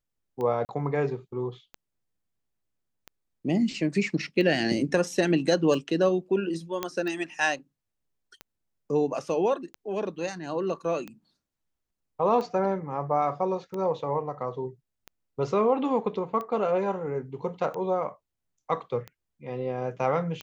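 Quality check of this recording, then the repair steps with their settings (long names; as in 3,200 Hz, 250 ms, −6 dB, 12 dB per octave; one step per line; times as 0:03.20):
scratch tick 45 rpm −23 dBFS
0:00.65–0:00.69: drop-out 39 ms
0:06.83: click −13 dBFS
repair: click removal
repair the gap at 0:00.65, 39 ms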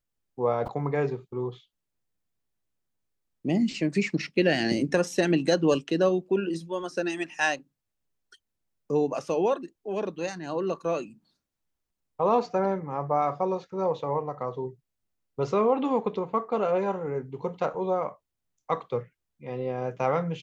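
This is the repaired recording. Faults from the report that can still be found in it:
none of them is left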